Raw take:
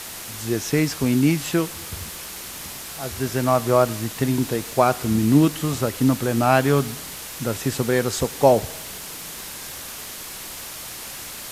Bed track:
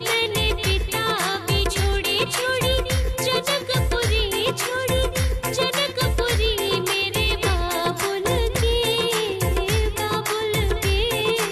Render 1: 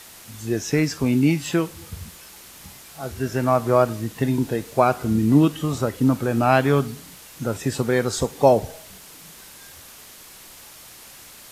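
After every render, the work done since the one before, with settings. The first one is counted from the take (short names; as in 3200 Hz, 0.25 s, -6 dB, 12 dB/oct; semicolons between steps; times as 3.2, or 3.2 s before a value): noise print and reduce 9 dB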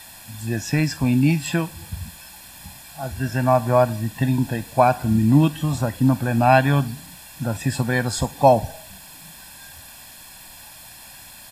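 notch 6200 Hz, Q 5.6; comb 1.2 ms, depth 76%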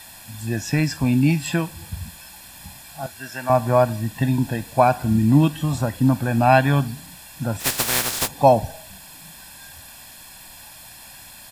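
3.06–3.5 HPF 1100 Hz 6 dB/oct; 7.59–8.27 spectral contrast lowered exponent 0.19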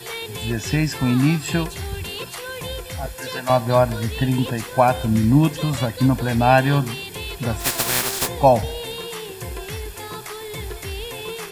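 add bed track -10 dB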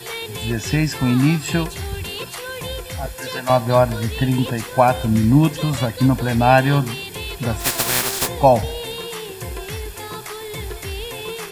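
gain +1.5 dB; limiter -1 dBFS, peak gain reduction 1 dB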